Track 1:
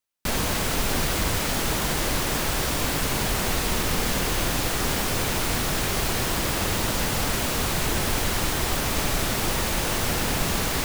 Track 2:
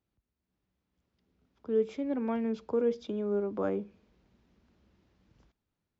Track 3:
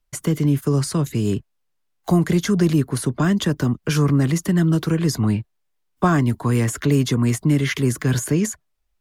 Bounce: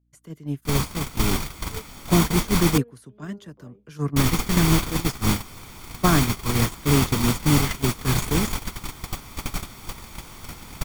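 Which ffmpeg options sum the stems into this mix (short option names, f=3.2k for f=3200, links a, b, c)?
-filter_complex "[0:a]aecho=1:1:0.9:0.47,adelay=400,volume=2.5dB,asplit=3[a][b][c];[a]atrim=end=2.78,asetpts=PTS-STARTPTS,afade=t=out:st=2.776:d=0.004:c=hsin[d];[b]atrim=start=2.78:end=4.16,asetpts=PTS-STARTPTS,volume=0[e];[c]atrim=start=4.16,asetpts=PTS-STARTPTS,afade=t=in:d=0.004:c=hsin[f];[d][e][f]concat=n=3:v=0:a=1[g];[1:a]volume=-2.5dB[h];[2:a]volume=-2dB[i];[g][h][i]amix=inputs=3:normalize=0,agate=range=-21dB:threshold=-16dB:ratio=16:detection=peak,aeval=exprs='val(0)+0.000447*(sin(2*PI*60*n/s)+sin(2*PI*2*60*n/s)/2+sin(2*PI*3*60*n/s)/3+sin(2*PI*4*60*n/s)/4+sin(2*PI*5*60*n/s)/5)':c=same"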